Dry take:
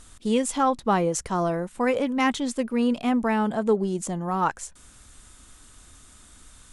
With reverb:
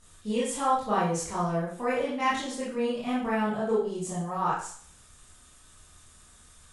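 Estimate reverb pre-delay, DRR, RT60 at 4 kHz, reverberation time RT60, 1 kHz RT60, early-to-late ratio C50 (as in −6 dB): 18 ms, −9.0 dB, 0.50 s, 0.50 s, 0.50 s, 2.5 dB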